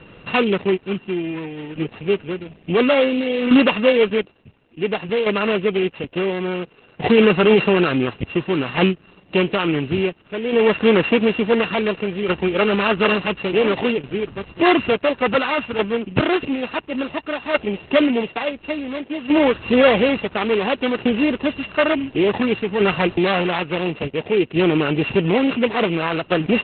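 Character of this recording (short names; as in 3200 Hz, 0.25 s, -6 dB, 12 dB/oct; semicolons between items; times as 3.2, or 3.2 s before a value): a buzz of ramps at a fixed pitch in blocks of 16 samples; tremolo saw down 0.57 Hz, depth 55%; Opus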